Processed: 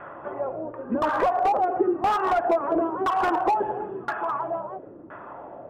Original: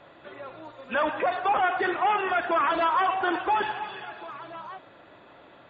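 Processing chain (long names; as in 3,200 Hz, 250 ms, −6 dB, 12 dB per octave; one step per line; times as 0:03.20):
auto-filter low-pass saw down 0.98 Hz 290–1,500 Hz
downward compressor 10 to 1, threshold −26 dBFS, peak gain reduction 11 dB
elliptic low-pass filter 3,200 Hz
on a send: backwards echo 280 ms −23 dB
on the sum: slew-rate limiting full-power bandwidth 39 Hz
level +8.5 dB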